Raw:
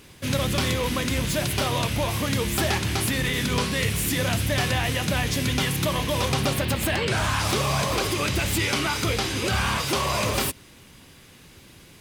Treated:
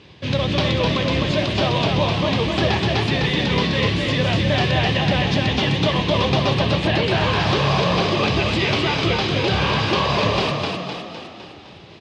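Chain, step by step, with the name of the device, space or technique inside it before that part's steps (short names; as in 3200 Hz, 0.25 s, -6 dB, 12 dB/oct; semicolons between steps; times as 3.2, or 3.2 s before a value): frequency-shifting delay pedal into a guitar cabinet (frequency-shifting echo 0.255 s, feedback 55%, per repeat +38 Hz, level -3.5 dB; speaker cabinet 76–4300 Hz, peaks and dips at 250 Hz -5 dB, 1400 Hz -8 dB, 2100 Hz -4 dB); gain +5 dB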